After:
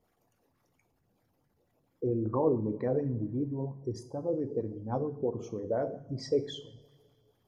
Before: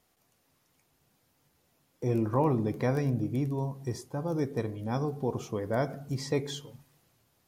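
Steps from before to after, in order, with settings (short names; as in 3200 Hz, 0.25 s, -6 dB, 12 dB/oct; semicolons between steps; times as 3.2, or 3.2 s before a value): formant sharpening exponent 2; two-slope reverb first 0.45 s, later 2.4 s, from -20 dB, DRR 8 dB; LFO bell 4.4 Hz 420–1900 Hz +8 dB; gain -4 dB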